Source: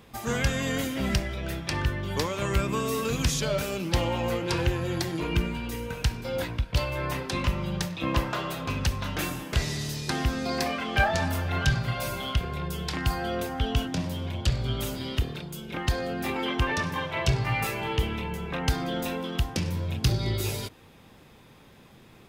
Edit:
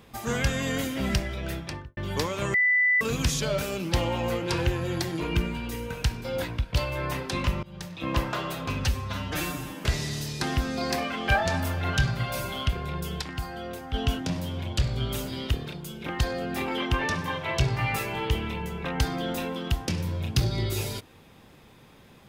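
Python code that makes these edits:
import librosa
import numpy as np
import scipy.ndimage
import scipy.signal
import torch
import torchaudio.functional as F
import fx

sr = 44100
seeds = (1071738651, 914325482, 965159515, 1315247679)

y = fx.studio_fade_out(x, sr, start_s=1.53, length_s=0.44)
y = fx.edit(y, sr, fx.bleep(start_s=2.54, length_s=0.47, hz=1990.0, db=-18.5),
    fx.fade_in_from(start_s=7.63, length_s=0.58, floor_db=-22.5),
    fx.stretch_span(start_s=8.85, length_s=0.64, factor=1.5),
    fx.clip_gain(start_s=12.9, length_s=0.72, db=-6.5), tone=tone)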